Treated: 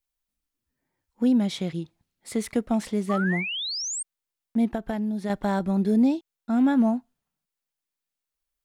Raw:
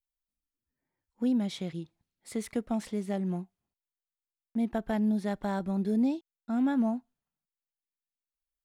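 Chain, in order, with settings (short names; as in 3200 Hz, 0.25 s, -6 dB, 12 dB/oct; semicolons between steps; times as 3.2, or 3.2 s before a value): 3.09–4.03 painted sound rise 1100–8800 Hz -37 dBFS; 4.67–5.3 compressor 6:1, threshold -32 dBFS, peak gain reduction 8 dB; gain +6.5 dB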